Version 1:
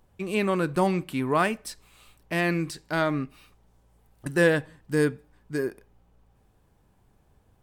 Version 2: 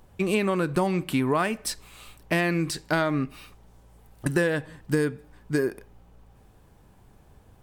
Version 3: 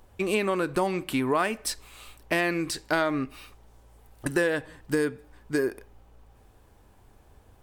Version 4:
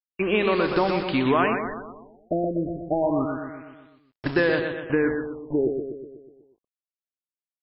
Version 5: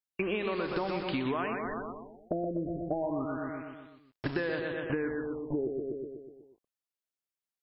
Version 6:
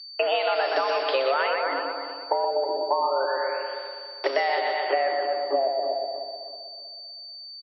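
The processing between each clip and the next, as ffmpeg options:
-af "acompressor=threshold=0.0398:ratio=8,volume=2.51"
-af "equalizer=f=160:t=o:w=0.76:g=-9.5"
-af "acrusher=bits=5:mix=0:aa=0.000001,aecho=1:1:123|246|369|492|615|738|861:0.501|0.276|0.152|0.0834|0.0459|0.0252|0.0139,afftfilt=real='re*lt(b*sr/1024,680*pow(5500/680,0.5+0.5*sin(2*PI*0.29*pts/sr)))':imag='im*lt(b*sr/1024,680*pow(5500/680,0.5+0.5*sin(2*PI*0.29*pts/sr)))':win_size=1024:overlap=0.75,volume=1.41"
-af "acompressor=threshold=0.0316:ratio=5"
-filter_complex "[0:a]aeval=exprs='val(0)+0.00447*sin(2*PI*4300*n/s)':c=same,afreqshift=270,asplit=2[s0][s1];[s1]adelay=319,lowpass=f=3800:p=1,volume=0.316,asplit=2[s2][s3];[s3]adelay=319,lowpass=f=3800:p=1,volume=0.38,asplit=2[s4][s5];[s5]adelay=319,lowpass=f=3800:p=1,volume=0.38,asplit=2[s6][s7];[s7]adelay=319,lowpass=f=3800:p=1,volume=0.38[s8];[s2][s4][s6][s8]amix=inputs=4:normalize=0[s9];[s0][s9]amix=inputs=2:normalize=0,volume=2.51"

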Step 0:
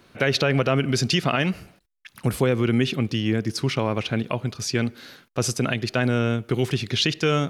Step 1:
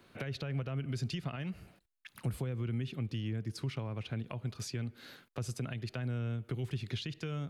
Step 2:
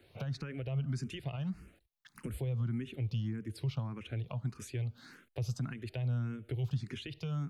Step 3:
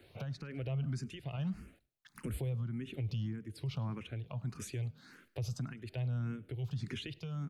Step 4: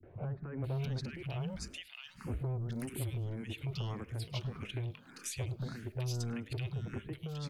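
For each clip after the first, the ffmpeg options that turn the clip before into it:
-filter_complex "[0:a]equalizer=f=5700:t=o:w=0.38:g=-5,acrossover=split=140[s0][s1];[s1]acompressor=threshold=0.0224:ratio=10[s2];[s0][s2]amix=inputs=2:normalize=0,volume=0.447"
-filter_complex "[0:a]lowshelf=f=140:g=7.5,asplit=2[s0][s1];[s1]afreqshift=1.7[s2];[s0][s2]amix=inputs=2:normalize=1"
-filter_complex "[0:a]asplit=3[s0][s1][s2];[s1]adelay=104,afreqshift=36,volume=0.0631[s3];[s2]adelay=208,afreqshift=72,volume=0.0234[s4];[s0][s3][s4]amix=inputs=3:normalize=0,tremolo=f=1.3:d=0.56,alimiter=level_in=2.66:limit=0.0631:level=0:latency=1:release=31,volume=0.376,volume=1.33"
-filter_complex "[0:a]acrossover=split=1700[s0][s1];[s0]asoftclip=type=tanh:threshold=0.0112[s2];[s2][s1]amix=inputs=2:normalize=0,acrossover=split=200|1500[s3][s4][s5];[s4]adelay=30[s6];[s5]adelay=640[s7];[s3][s6][s7]amix=inputs=3:normalize=0,volume=2.11"

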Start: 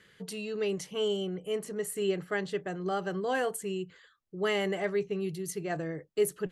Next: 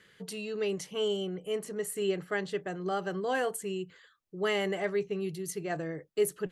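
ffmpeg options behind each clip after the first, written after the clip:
-af "lowshelf=f=160:g=-3.5"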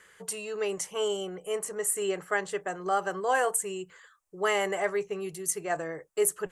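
-af "equalizer=f=125:t=o:w=1:g=-10,equalizer=f=250:t=o:w=1:g=-10,equalizer=f=1000:t=o:w=1:g=6,equalizer=f=4000:t=o:w=1:g=-9,equalizer=f=8000:t=o:w=1:g=10,volume=1.58"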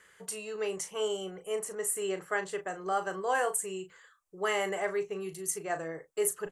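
-filter_complex "[0:a]asplit=2[s0][s1];[s1]adelay=37,volume=0.316[s2];[s0][s2]amix=inputs=2:normalize=0,volume=0.668"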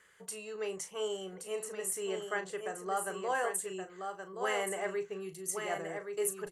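-af "aecho=1:1:1123:0.501,volume=0.631"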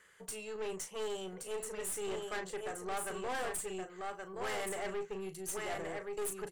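-af "aeval=exprs='(tanh(70.8*val(0)+0.5)-tanh(0.5))/70.8':c=same,volume=1.33"

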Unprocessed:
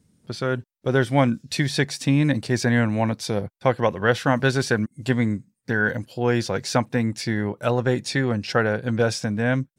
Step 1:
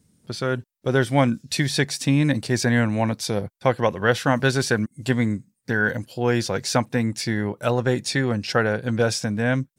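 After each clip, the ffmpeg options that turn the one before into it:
-af "highshelf=f=5600:g=6"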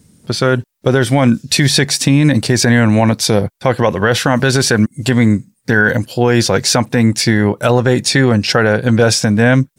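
-af "alimiter=level_in=5.01:limit=0.891:release=50:level=0:latency=1,volume=0.891"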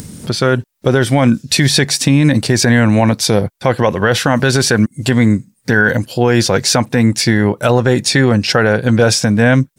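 -af "acompressor=mode=upward:threshold=0.141:ratio=2.5"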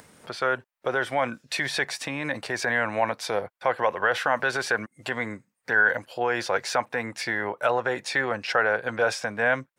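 -filter_complex "[0:a]acrossover=split=530 2500:gain=0.0708 1 0.178[s0][s1][s2];[s0][s1][s2]amix=inputs=3:normalize=0,volume=0.531"

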